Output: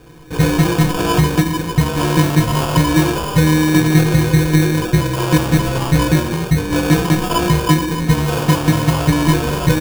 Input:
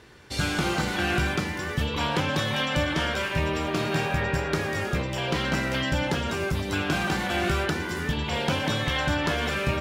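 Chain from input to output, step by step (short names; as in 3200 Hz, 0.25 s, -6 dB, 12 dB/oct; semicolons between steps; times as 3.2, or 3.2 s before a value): steep low-pass 3500 Hz 36 dB/oct; band shelf 910 Hz -10 dB 2.4 oct; metallic resonator 150 Hz, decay 0.27 s, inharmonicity 0.03; sample-and-hold 22×; doubler 17 ms -7 dB; maximiser +26.5 dB; gain -1 dB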